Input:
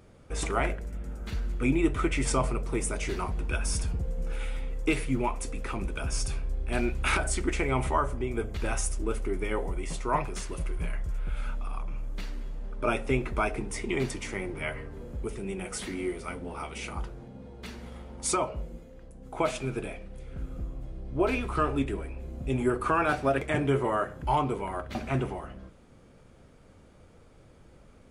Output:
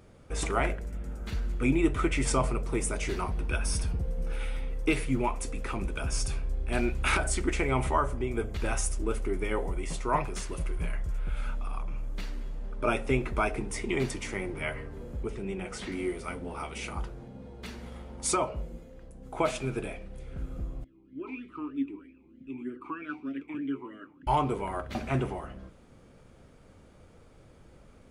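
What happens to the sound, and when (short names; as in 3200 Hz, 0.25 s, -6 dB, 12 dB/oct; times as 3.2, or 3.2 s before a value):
3.21–4.96 notch 7200 Hz, Q 5.5
15.23–15.92 air absorption 73 m
20.84–24.27 vowel sweep i-u 3.2 Hz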